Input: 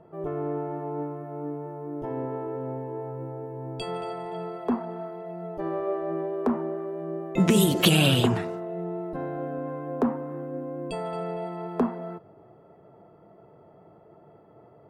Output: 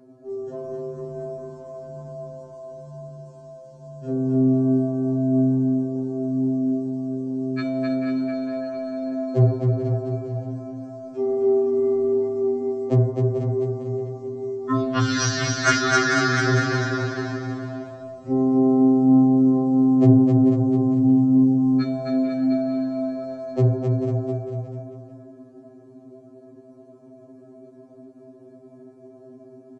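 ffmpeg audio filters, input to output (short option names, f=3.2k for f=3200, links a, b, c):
-filter_complex "[0:a]asplit=2[a][b];[b]aecho=0:1:221:0.316[c];[a][c]amix=inputs=2:normalize=0,alimiter=limit=-16.5dB:level=0:latency=1:release=491,highpass=300,aecho=1:1:5.3:0.71,asplit=2[d][e];[e]aecho=0:1:130|247|352.3|447.1|532.4:0.631|0.398|0.251|0.158|0.1[f];[d][f]amix=inputs=2:normalize=0,acontrast=40,bandreject=f=7.3k:w=22,asetrate=22050,aresample=44100,afftfilt=real='re*2.45*eq(mod(b,6),0)':imag='im*2.45*eq(mod(b,6),0)':win_size=2048:overlap=0.75,volume=5dB"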